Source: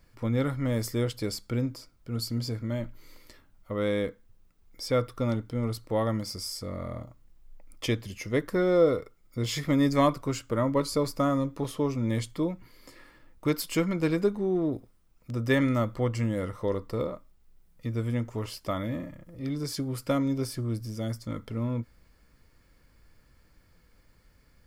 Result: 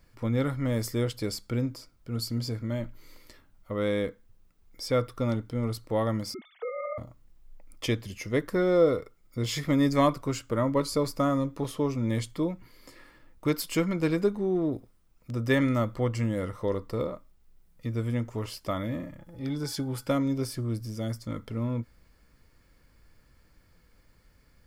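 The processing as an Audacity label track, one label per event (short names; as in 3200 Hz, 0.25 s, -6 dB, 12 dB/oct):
6.340000	6.980000	sine-wave speech
19.180000	20.080000	small resonant body resonances 840/1500/3400 Hz, height 17 dB, ringing for 0.1 s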